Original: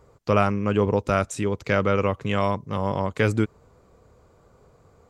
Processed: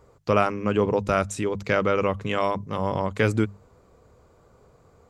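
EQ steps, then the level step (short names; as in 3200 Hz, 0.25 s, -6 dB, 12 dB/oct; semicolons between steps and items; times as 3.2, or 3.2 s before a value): notches 50/100/150/200 Hz; 0.0 dB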